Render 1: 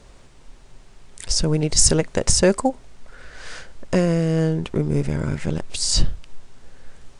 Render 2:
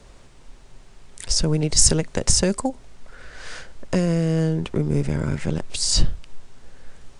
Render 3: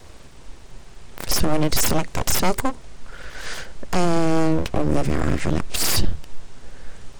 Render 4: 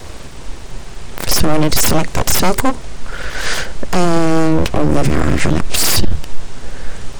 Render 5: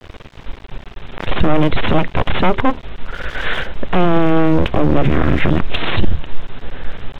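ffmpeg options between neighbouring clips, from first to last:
ffmpeg -i in.wav -filter_complex "[0:a]acrossover=split=240|3000[link_01][link_02][link_03];[link_02]acompressor=threshold=-22dB:ratio=6[link_04];[link_01][link_04][link_03]amix=inputs=3:normalize=0" out.wav
ffmpeg -i in.wav -af "alimiter=limit=-13.5dB:level=0:latency=1:release=32,aeval=exprs='abs(val(0))':channel_layout=same,volume=6dB" out.wav
ffmpeg -i in.wav -filter_complex "[0:a]asplit=2[link_01][link_02];[link_02]acontrast=81,volume=3dB[link_03];[link_01][link_03]amix=inputs=2:normalize=0,alimiter=level_in=1.5dB:limit=-1dB:release=50:level=0:latency=1,volume=-1dB" out.wav
ffmpeg -i in.wav -af "aresample=8000,acrusher=bits=4:dc=4:mix=0:aa=0.000001,aresample=44100,aeval=exprs='sgn(val(0))*max(abs(val(0))-0.0422,0)':channel_layout=same" out.wav

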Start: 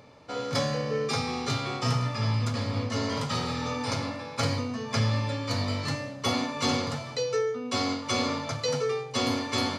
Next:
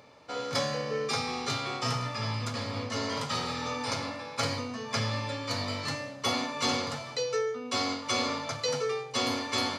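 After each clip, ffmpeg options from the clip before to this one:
ffmpeg -i in.wav -af "lowshelf=frequency=310:gain=-8.5" out.wav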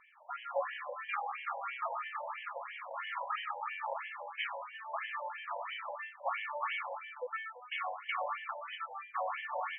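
ffmpeg -i in.wav -af "afftfilt=real='re*between(b*sr/1024,700*pow(2400/700,0.5+0.5*sin(2*PI*3*pts/sr))/1.41,700*pow(2400/700,0.5+0.5*sin(2*PI*3*pts/sr))*1.41)':imag='im*between(b*sr/1024,700*pow(2400/700,0.5+0.5*sin(2*PI*3*pts/sr))/1.41,700*pow(2400/700,0.5+0.5*sin(2*PI*3*pts/sr))*1.41)':win_size=1024:overlap=0.75,volume=1dB" out.wav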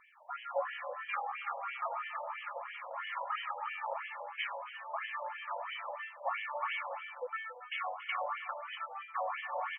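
ffmpeg -i in.wav -af "aecho=1:1:279:0.188" out.wav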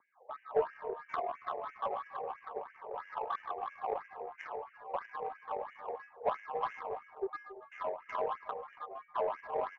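ffmpeg -i in.wav -af "highpass=frequency=320:width_type=q:width=0.5412,highpass=frequency=320:width_type=q:width=1.307,lowpass=frequency=2800:width_type=q:width=0.5176,lowpass=frequency=2800:width_type=q:width=0.7071,lowpass=frequency=2800:width_type=q:width=1.932,afreqshift=-110,adynamicsmooth=sensitivity=1:basefreq=630,volume=5.5dB" out.wav

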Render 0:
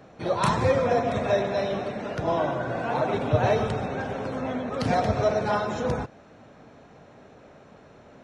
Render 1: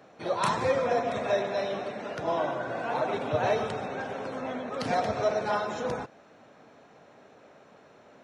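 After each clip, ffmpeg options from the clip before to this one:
ffmpeg -i in.wav -af "highpass=frequency=340:poles=1,volume=-2dB" out.wav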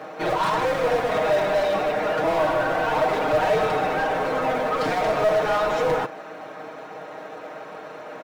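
ffmpeg -i in.wav -filter_complex "[0:a]acrusher=bits=4:mode=log:mix=0:aa=0.000001,asplit=2[link_01][link_02];[link_02]highpass=frequency=720:poles=1,volume=28dB,asoftclip=type=tanh:threshold=-14dB[link_03];[link_01][link_03]amix=inputs=2:normalize=0,lowpass=frequency=1300:poles=1,volume=-6dB,aecho=1:1:6.4:0.65,volume=-1dB" out.wav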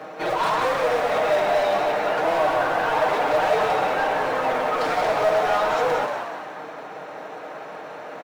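ffmpeg -i in.wav -filter_complex "[0:a]acrossover=split=350[link_01][link_02];[link_01]asoftclip=type=tanh:threshold=-37.5dB[link_03];[link_03][link_02]amix=inputs=2:normalize=0,asplit=7[link_04][link_05][link_06][link_07][link_08][link_09][link_10];[link_05]adelay=180,afreqshift=100,volume=-6dB[link_11];[link_06]adelay=360,afreqshift=200,volume=-12.6dB[link_12];[link_07]adelay=540,afreqshift=300,volume=-19.1dB[link_13];[link_08]adelay=720,afreqshift=400,volume=-25.7dB[link_14];[link_09]adelay=900,afreqshift=500,volume=-32.2dB[link_15];[link_10]adelay=1080,afreqshift=600,volume=-38.8dB[link_16];[link_04][link_11][link_12][link_13][link_14][link_15][link_16]amix=inputs=7:normalize=0" out.wav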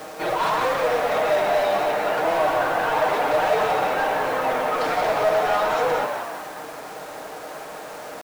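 ffmpeg -i in.wav -af "acrusher=bits=6:mix=0:aa=0.000001" out.wav

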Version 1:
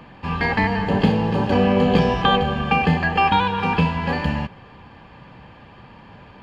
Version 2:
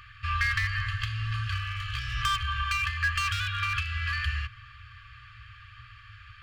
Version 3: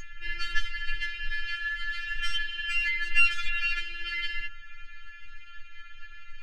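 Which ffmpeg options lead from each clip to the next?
ffmpeg -i in.wav -filter_complex "[0:a]acrossover=split=490[link_01][link_02];[link_02]volume=18.5dB,asoftclip=hard,volume=-18.5dB[link_03];[link_01][link_03]amix=inputs=2:normalize=0,acompressor=threshold=-19dB:ratio=6,afftfilt=real='re*(1-between(b*sr/4096,120,1100))':imag='im*(1-between(b*sr/4096,120,1100))':win_size=4096:overlap=0.75" out.wav
ffmpeg -i in.wav -af "aeval=exprs='val(0)+0.0141*sin(2*PI*6500*n/s)':channel_layout=same,aemphasis=mode=reproduction:type=bsi,afftfilt=real='re*4*eq(mod(b,16),0)':imag='im*4*eq(mod(b,16),0)':win_size=2048:overlap=0.75,volume=6dB" out.wav

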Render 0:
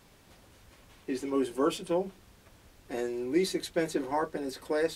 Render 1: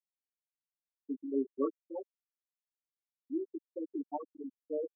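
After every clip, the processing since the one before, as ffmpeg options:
ffmpeg -i in.wav -af "aecho=1:1:7:0.63,afftfilt=real='re*gte(hypot(re,im),0.251)':imag='im*gte(hypot(re,im),0.251)':win_size=1024:overlap=0.75,volume=-6.5dB" out.wav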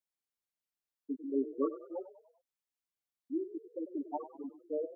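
ffmpeg -i in.wav -filter_complex "[0:a]asplit=5[link_01][link_02][link_03][link_04][link_05];[link_02]adelay=97,afreqshift=35,volume=-14dB[link_06];[link_03]adelay=194,afreqshift=70,volume=-20.9dB[link_07];[link_04]adelay=291,afreqshift=105,volume=-27.9dB[link_08];[link_05]adelay=388,afreqshift=140,volume=-34.8dB[link_09];[link_01][link_06][link_07][link_08][link_09]amix=inputs=5:normalize=0" out.wav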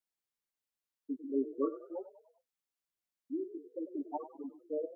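ffmpeg -i in.wav -af "flanger=delay=3.5:depth=6.1:regen=-72:speed=0.93:shape=sinusoidal,volume=3.5dB" out.wav

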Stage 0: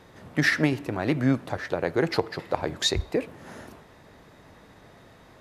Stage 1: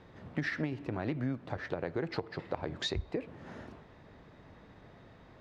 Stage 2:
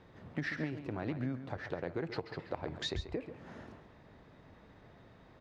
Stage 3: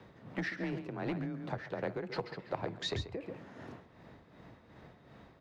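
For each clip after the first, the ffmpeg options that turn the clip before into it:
ffmpeg -i in.wav -af "lowpass=4200,lowshelf=frequency=320:gain=5,acompressor=threshold=-25dB:ratio=5,volume=-6dB" out.wav
ffmpeg -i in.wav -af "aecho=1:1:137:0.282,volume=-3dB" out.wav
ffmpeg -i in.wav -filter_complex "[0:a]tremolo=f=2.7:d=0.57,afreqshift=26,acrossover=split=520[link_01][link_02];[link_01]asoftclip=type=hard:threshold=-37dB[link_03];[link_03][link_02]amix=inputs=2:normalize=0,volume=4dB" out.wav

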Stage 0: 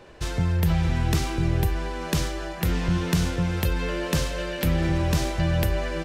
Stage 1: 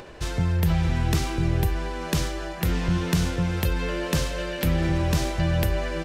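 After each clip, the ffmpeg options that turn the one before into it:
ffmpeg -i in.wav -af "acompressor=mode=upward:threshold=-37dB:ratio=2.5" out.wav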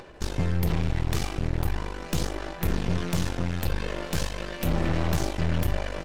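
ffmpeg -i in.wav -af "aphaser=in_gain=1:out_gain=1:delay=1.7:decay=0.3:speed=0.4:type=sinusoidal,aeval=exprs='0.398*(cos(1*acos(clip(val(0)/0.398,-1,1)))-cos(1*PI/2))+0.0794*(cos(8*acos(clip(val(0)/0.398,-1,1)))-cos(8*PI/2))':channel_layout=same,volume=-7dB" out.wav

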